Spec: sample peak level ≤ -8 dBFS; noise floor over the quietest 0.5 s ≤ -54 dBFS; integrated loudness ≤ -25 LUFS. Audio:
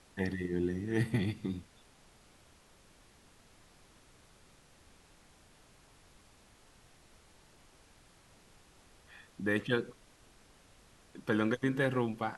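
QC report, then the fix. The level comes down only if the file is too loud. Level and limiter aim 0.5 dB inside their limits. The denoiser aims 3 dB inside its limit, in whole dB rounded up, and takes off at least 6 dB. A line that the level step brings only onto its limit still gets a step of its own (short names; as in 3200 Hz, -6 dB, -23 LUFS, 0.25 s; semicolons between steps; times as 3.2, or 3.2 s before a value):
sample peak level -17.0 dBFS: OK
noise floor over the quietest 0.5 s -62 dBFS: OK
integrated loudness -34.0 LUFS: OK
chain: none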